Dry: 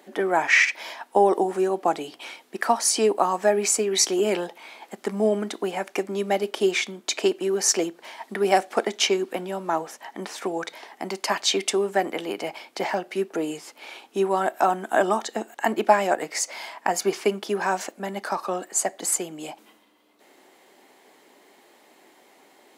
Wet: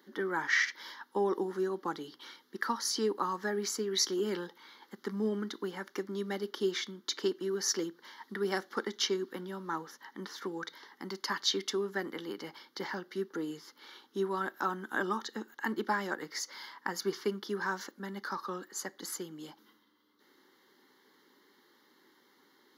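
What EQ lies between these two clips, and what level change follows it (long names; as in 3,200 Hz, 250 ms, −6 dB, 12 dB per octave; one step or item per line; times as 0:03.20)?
phaser with its sweep stopped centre 2,500 Hz, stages 6
−5.5 dB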